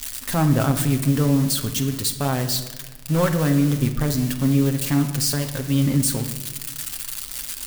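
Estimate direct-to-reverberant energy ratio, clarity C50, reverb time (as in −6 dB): 4.0 dB, 10.0 dB, 1.3 s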